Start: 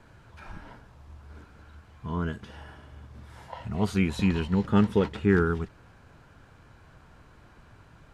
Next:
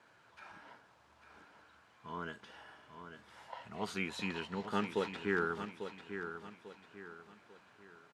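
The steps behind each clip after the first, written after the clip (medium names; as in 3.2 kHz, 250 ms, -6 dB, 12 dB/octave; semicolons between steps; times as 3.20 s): frequency weighting A; feedback delay 845 ms, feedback 37%, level -9 dB; trim -6 dB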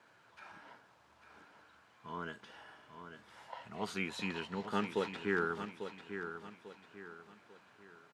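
high-pass 77 Hz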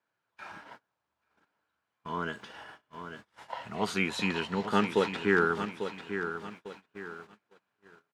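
gate -55 dBFS, range -27 dB; trim +8.5 dB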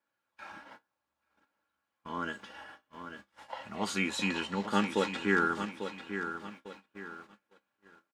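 feedback comb 66 Hz, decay 0.17 s, harmonics all, mix 50%; dynamic bell 7.5 kHz, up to +6 dB, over -58 dBFS, Q 1.4; comb 3.6 ms, depth 46%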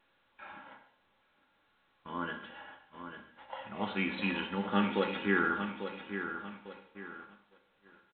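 echo from a far wall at 17 m, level -20 dB; gated-style reverb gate 250 ms falling, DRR 4.5 dB; trim -2.5 dB; A-law 64 kbps 8 kHz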